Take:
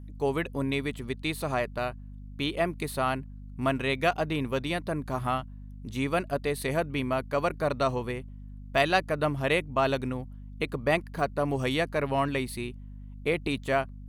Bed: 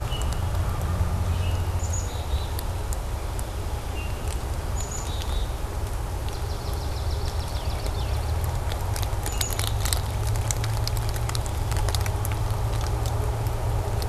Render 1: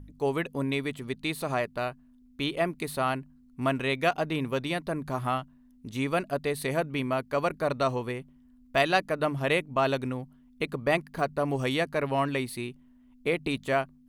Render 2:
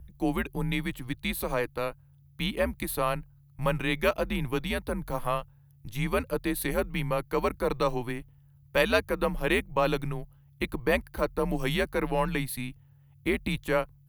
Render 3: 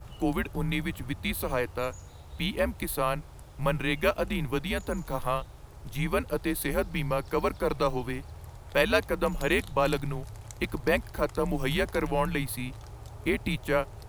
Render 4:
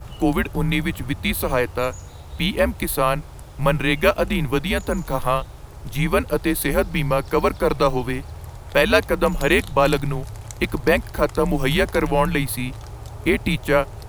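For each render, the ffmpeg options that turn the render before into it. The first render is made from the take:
-af "bandreject=f=50:t=h:w=4,bandreject=f=100:t=h:w=4,bandreject=f=150:t=h:w=4,bandreject=f=200:t=h:w=4"
-af "afreqshift=-110,aexciter=amount=5.1:drive=2.2:freq=11k"
-filter_complex "[1:a]volume=-18.5dB[a];[0:a][a]amix=inputs=2:normalize=0"
-af "volume=8.5dB,alimiter=limit=-3dB:level=0:latency=1"

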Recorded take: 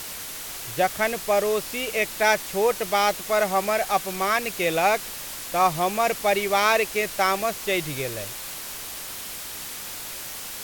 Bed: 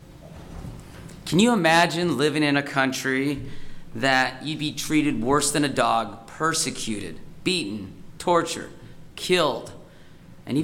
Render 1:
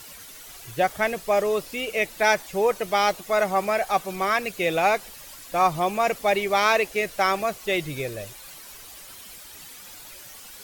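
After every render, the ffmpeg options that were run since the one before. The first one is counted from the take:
-af "afftdn=nr=11:nf=-36"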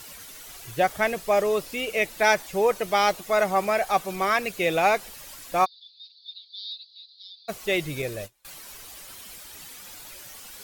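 -filter_complex "[0:a]asplit=3[a][b][c];[a]afade=t=out:st=5.64:d=0.02[d];[b]asuperpass=centerf=4100:order=8:qfactor=3.5,afade=t=in:st=5.64:d=0.02,afade=t=out:st=7.48:d=0.02[e];[c]afade=t=in:st=7.48:d=0.02[f];[d][e][f]amix=inputs=3:normalize=0,asettb=1/sr,asplit=3[g][h][i];[g]atrim=end=8.024[j];[h]atrim=start=8.02:end=8.45,asetpts=PTS-STARTPTS,afade=t=in:d=0.004:c=qsin,afade=t=out:st=0.426:d=0.004:c=qsin,agate=range=-27dB:threshold=-38dB:ratio=16:release=100:detection=peak[k];[i]atrim=start=8.446[l];[j][k]acrossfade=d=0.004:c1=hsin:c2=qsin[m];[m][l]acrossfade=d=0.004:c1=qsin:c2=hsin"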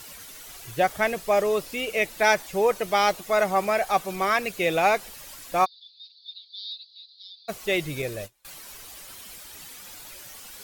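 -af anull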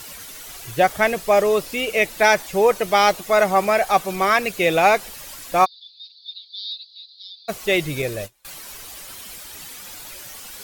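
-af "volume=5.5dB,alimiter=limit=-3dB:level=0:latency=1"

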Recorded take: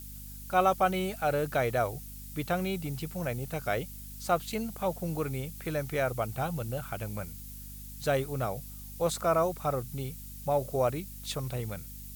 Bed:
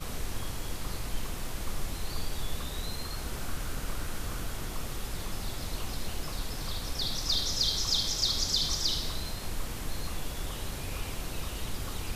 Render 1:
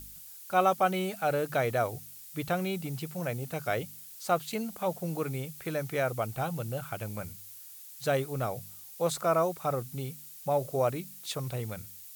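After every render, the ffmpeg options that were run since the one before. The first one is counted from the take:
-af "bandreject=f=50:t=h:w=4,bandreject=f=100:t=h:w=4,bandreject=f=150:t=h:w=4,bandreject=f=200:t=h:w=4,bandreject=f=250:t=h:w=4"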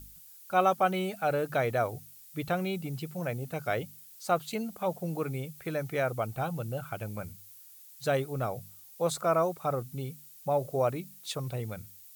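-af "afftdn=nr=6:nf=-48"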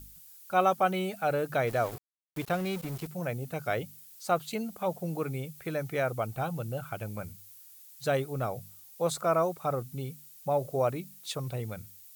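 -filter_complex "[0:a]asettb=1/sr,asplit=3[a][b][c];[a]atrim=end=1.674[d];[b]atrim=start=1.67:end=3.07,asetpts=PTS-STARTPTS,afade=t=in:d=0.004:c=qsin,afade=t=out:st=1.396:d=0.004:c=qsin,aeval=exprs='val(0)*gte(abs(val(0)),0.0119)':c=same[e];[c]atrim=start=3.066[f];[d][e]acrossfade=d=0.004:c1=hsin:c2=qsin[g];[g][f]acrossfade=d=0.004:c1=qsin:c2=hsin"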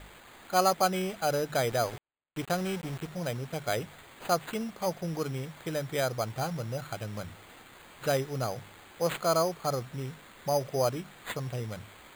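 -af "acrusher=samples=8:mix=1:aa=0.000001"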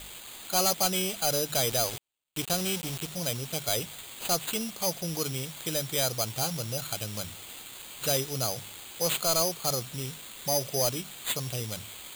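-af "aexciter=amount=2.6:drive=8.5:freq=2.6k,asoftclip=type=tanh:threshold=-19.5dB"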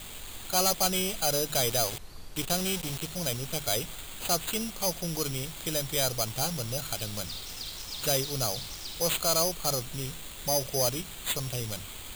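-filter_complex "[1:a]volume=-12dB[a];[0:a][a]amix=inputs=2:normalize=0"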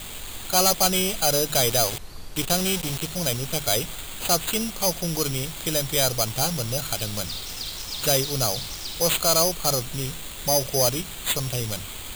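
-af "volume=6dB"

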